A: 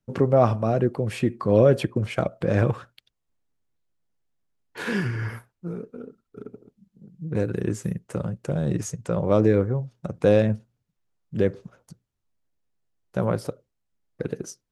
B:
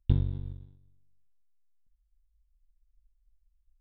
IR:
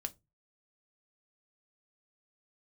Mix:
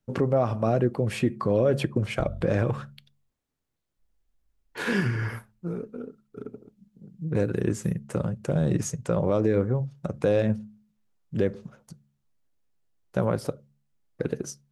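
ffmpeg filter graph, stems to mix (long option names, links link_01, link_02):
-filter_complex "[0:a]bandreject=frequency=70.64:width_type=h:width=4,bandreject=frequency=141.28:width_type=h:width=4,bandreject=frequency=211.92:width_type=h:width=4,volume=-1dB,asplit=2[link_01][link_02];[link_02]volume=-9.5dB[link_03];[1:a]acrossover=split=150[link_04][link_05];[link_05]acompressor=threshold=-46dB:ratio=6[link_06];[link_04][link_06]amix=inputs=2:normalize=0,adelay=2100,volume=-5.5dB[link_07];[2:a]atrim=start_sample=2205[link_08];[link_03][link_08]afir=irnorm=-1:irlink=0[link_09];[link_01][link_07][link_09]amix=inputs=3:normalize=0,alimiter=limit=-12.5dB:level=0:latency=1:release=178"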